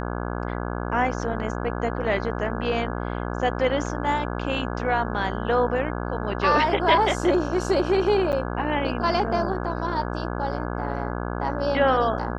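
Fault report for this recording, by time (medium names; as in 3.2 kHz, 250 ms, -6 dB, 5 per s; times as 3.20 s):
buzz 60 Hz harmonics 28 -29 dBFS
8.32–8.33 s: dropout 8.7 ms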